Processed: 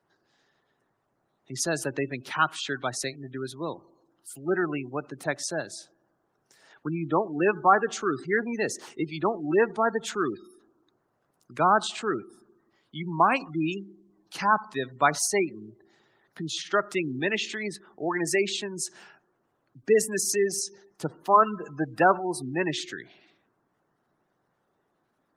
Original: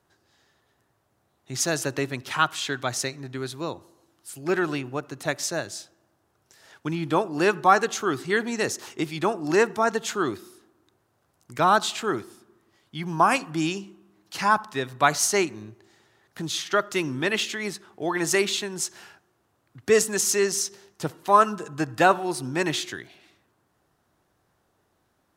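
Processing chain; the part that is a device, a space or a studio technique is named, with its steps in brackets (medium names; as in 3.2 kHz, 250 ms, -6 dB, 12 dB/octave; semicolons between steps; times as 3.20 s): noise-suppressed video call (high-pass 130 Hz 24 dB/octave; spectral gate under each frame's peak -20 dB strong; trim -1.5 dB; Opus 32 kbps 48 kHz)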